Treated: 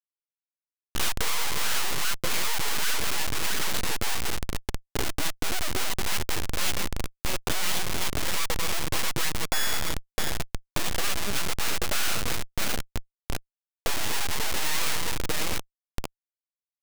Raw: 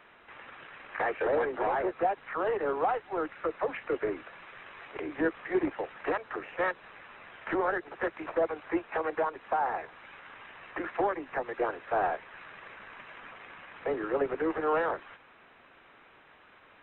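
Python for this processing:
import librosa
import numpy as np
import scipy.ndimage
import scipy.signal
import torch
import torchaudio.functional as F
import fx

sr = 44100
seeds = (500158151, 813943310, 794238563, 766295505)

y = fx.env_lowpass(x, sr, base_hz=780.0, full_db=-25.5)
y = fx.echo_split(y, sr, split_hz=630.0, low_ms=218, high_ms=656, feedback_pct=52, wet_db=-7.5)
y = fx.sample_hold(y, sr, seeds[0], rate_hz=3400.0, jitter_pct=0, at=(9.44, 10.32))
y = fx.schmitt(y, sr, flips_db=-34.0)
y = fx.high_shelf(y, sr, hz=2000.0, db=9.0)
y = np.abs(y)
y = y * librosa.db_to_amplitude(8.0)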